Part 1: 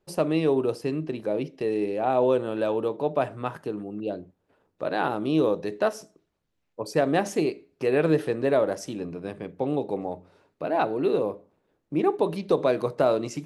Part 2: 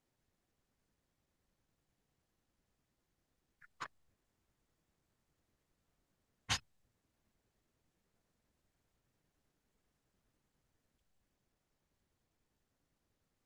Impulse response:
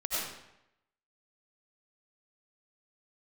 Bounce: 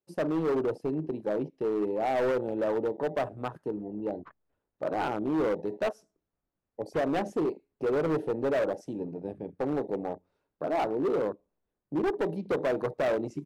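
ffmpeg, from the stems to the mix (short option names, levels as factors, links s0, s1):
-filter_complex "[0:a]afwtdn=0.0282,highpass=74,volume=0.841[s0];[1:a]lowpass=1500,adelay=450,volume=0.596[s1];[s0][s1]amix=inputs=2:normalize=0,volume=15,asoftclip=hard,volume=0.0668,equalizer=f=140:w=1.4:g=-2"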